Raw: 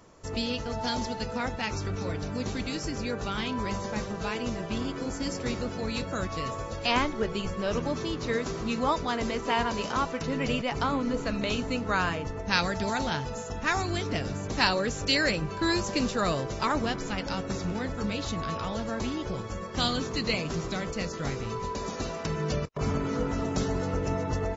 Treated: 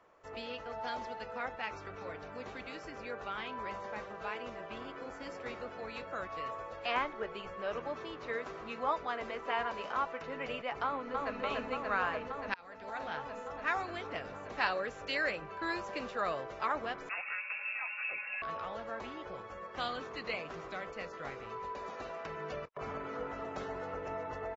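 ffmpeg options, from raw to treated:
-filter_complex "[0:a]asplit=2[s0][s1];[s1]afade=t=in:st=10.85:d=0.01,afade=t=out:st=11.39:d=0.01,aecho=0:1:290|580|870|1160|1450|1740|2030|2320|2610|2900|3190|3480:0.841395|0.715186|0.607908|0.516722|0.439214|0.373331|0.317332|0.269732|0.229272|0.194881|0.165649|0.140802[s2];[s0][s2]amix=inputs=2:normalize=0,asettb=1/sr,asplit=3[s3][s4][s5];[s3]atrim=end=17.094[s6];[s4]atrim=start=17.09:end=18.42,asetpts=PTS-STARTPTS,afade=t=in:d=0.004:c=qsin,afade=t=out:st=1.326:d=0.004:c=qsin,lowpass=f=2400:t=q:w=0.5098,lowpass=f=2400:t=q:w=0.6013,lowpass=f=2400:t=q:w=0.9,lowpass=f=2400:t=q:w=2.563,afreqshift=-2800[s7];[s5]atrim=start=18.416[s8];[s6][s7]acrossfade=d=0.004:c1=hsin:c2=qsin[s9];[s9][s8]acrossfade=d=0.004:c1=qsin:c2=hsin,asplit=2[s10][s11];[s10]atrim=end=12.54,asetpts=PTS-STARTPTS,afade=t=out:st=12.536:d=0.004:c=hsin[s12];[s11]atrim=start=12.54,asetpts=PTS-STARTPTS,afade=t=in:d=0.73[s13];[s12][s13]concat=n=2:v=0:a=1,acrossover=split=460 2800:gain=0.141 1 0.1[s14][s15][s16];[s14][s15][s16]amix=inputs=3:normalize=0,bandreject=f=940:w=20,volume=0.631"

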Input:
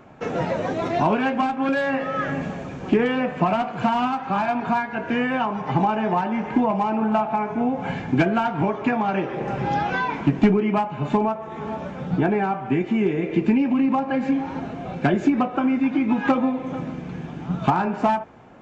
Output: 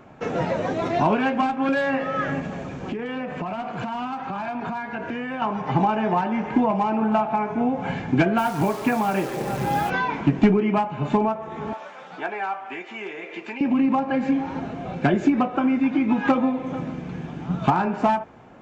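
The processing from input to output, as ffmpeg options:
-filter_complex "[0:a]asettb=1/sr,asplit=3[s0][s1][s2];[s0]atrim=end=2.394[s3];[s1]atrim=start=2.39:end=5.42,asetpts=PTS-STARTPTS,afade=t=in:d=0.004:c=qsin,afade=t=out:st=3.026:d=0.004:c=qsin,acompressor=threshold=0.0562:ratio=12:attack=3.2:release=140:knee=1:detection=peak[s4];[s2]atrim=start=5.416[s5];[s3][s4]acrossfade=d=0.004:c1=hsin:c2=qsin[s6];[s6][s5]acrossfade=d=0.004:c1=qsin:c2=hsin,asplit=3[s7][s8][s9];[s7]afade=t=out:st=8.37:d=0.02[s10];[s8]acrusher=bits=7:dc=4:mix=0:aa=0.000001,afade=t=in:st=8.37:d=0.02,afade=t=out:st=9.89:d=0.02[s11];[s9]afade=t=in:st=9.89:d=0.02[s12];[s10][s11][s12]amix=inputs=3:normalize=0,asettb=1/sr,asplit=3[s13][s14][s15];[s13]atrim=end=11.734[s16];[s14]atrim=start=11.73:end=13.61,asetpts=PTS-STARTPTS,afade=t=in:d=0.004:c=qsin,afade=t=out:st=1.876:d=0.004:c=qsin,highpass=800[s17];[s15]atrim=start=13.606[s18];[s16][s17]acrossfade=d=0.004:c1=hsin:c2=qsin[s19];[s19][s18]acrossfade=d=0.004:c1=qsin:c2=hsin"

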